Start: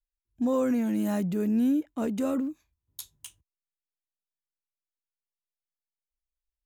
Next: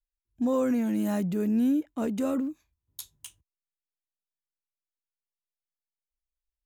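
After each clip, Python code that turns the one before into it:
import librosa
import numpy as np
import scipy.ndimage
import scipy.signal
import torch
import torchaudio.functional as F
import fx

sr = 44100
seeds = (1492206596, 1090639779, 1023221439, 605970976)

y = x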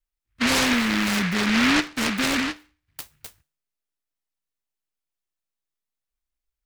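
y = fx.comb_fb(x, sr, f0_hz=150.0, decay_s=0.39, harmonics='all', damping=0.0, mix_pct=40)
y = fx.noise_mod_delay(y, sr, seeds[0], noise_hz=1800.0, depth_ms=0.47)
y = F.gain(torch.from_numpy(y), 8.5).numpy()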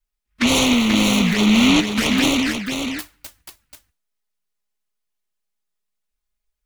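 y = fx.env_flanger(x, sr, rest_ms=4.8, full_db=-20.0)
y = y + 10.0 ** (-6.0 / 20.0) * np.pad(y, (int(485 * sr / 1000.0), 0))[:len(y)]
y = F.gain(torch.from_numpy(y), 6.5).numpy()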